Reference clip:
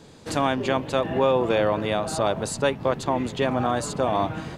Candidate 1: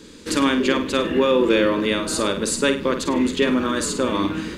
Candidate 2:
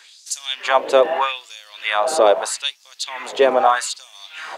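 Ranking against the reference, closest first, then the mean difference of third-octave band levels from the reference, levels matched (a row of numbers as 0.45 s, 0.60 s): 1, 2; 5.0 dB, 14.5 dB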